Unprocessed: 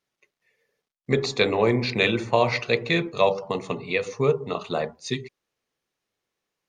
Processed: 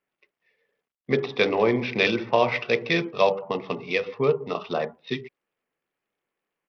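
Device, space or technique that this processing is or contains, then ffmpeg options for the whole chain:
Bluetooth headset: -af "highpass=160,aresample=8000,aresample=44100" -ar 44100 -c:a sbc -b:a 64k

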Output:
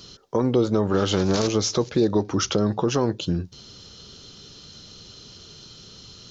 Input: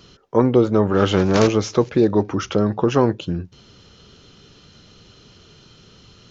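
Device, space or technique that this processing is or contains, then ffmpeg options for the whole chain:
over-bright horn tweeter: -af "highshelf=f=3200:t=q:w=1.5:g=7,alimiter=limit=0.316:level=0:latency=1:release=213"

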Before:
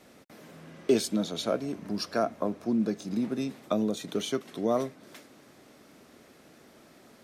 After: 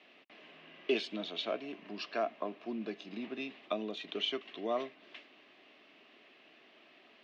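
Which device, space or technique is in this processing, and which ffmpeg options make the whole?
phone earpiece: -af "highpass=490,equalizer=f=510:t=q:w=4:g=-10,equalizer=f=870:t=q:w=4:g=-7,equalizer=f=1400:t=q:w=4:g=-9,equalizer=f=2800:t=q:w=4:g=9,lowpass=f=3600:w=0.5412,lowpass=f=3600:w=1.3066"

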